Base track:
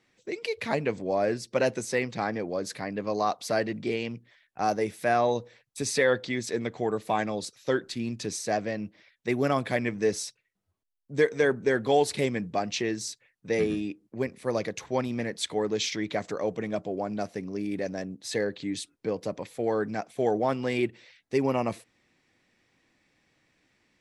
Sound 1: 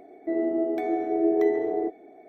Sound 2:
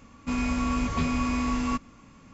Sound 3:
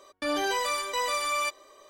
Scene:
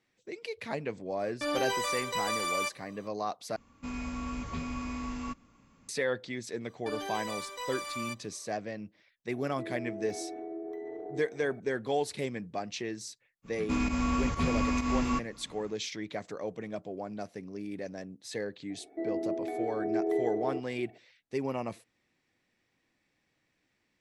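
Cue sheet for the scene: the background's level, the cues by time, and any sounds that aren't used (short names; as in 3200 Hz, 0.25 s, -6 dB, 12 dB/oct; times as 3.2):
base track -7.5 dB
1.19 add 3 -3.5 dB
3.56 replace with 2 -10 dB
6.64 add 3 -10 dB
9.32 add 1 -2 dB + compressor, threshold -36 dBFS
13.42 add 2 -2 dB, fades 0.05 s + pump 130 bpm, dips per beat 1, -9 dB, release 0.118 s
18.7 add 1 -7.5 dB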